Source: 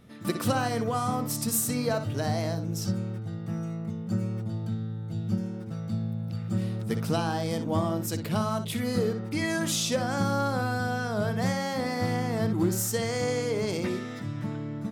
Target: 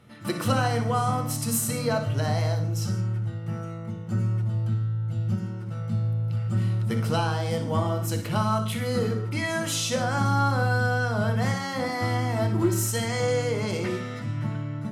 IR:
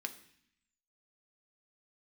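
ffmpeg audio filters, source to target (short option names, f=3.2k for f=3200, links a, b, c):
-filter_complex "[0:a]asettb=1/sr,asplit=3[a][b][c];[a]atrim=end=11.844[d];[b]atrim=start=11.84:end=13.2,asetpts=PTS-STARTPTS,afade=t=in:d=0.004:c=qsin,afade=t=out:st=1.356:d=0.004:c=qsin,aecho=1:1:3.1:0.49,atrim=end_sample=59976[e];[c]atrim=start=13.196[f];[d][e]acrossfade=d=0.004:c1=hsin:c2=qsin[g];[g][f]acrossfade=d=0.004:c1=qsin:c2=hsin[h];[1:a]atrim=start_sample=2205,atrim=end_sample=4410,asetrate=24696,aresample=44100[i];[h][i]afir=irnorm=-1:irlink=0"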